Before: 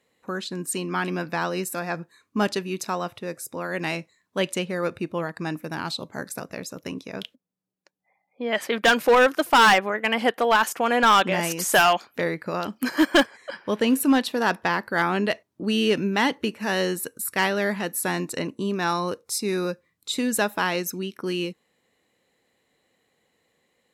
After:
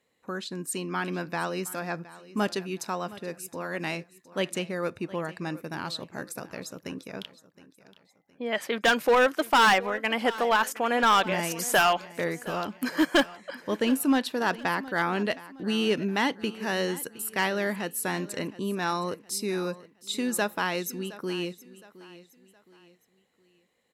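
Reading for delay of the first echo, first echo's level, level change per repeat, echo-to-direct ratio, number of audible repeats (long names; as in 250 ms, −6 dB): 716 ms, −18.0 dB, −8.5 dB, −17.5 dB, 3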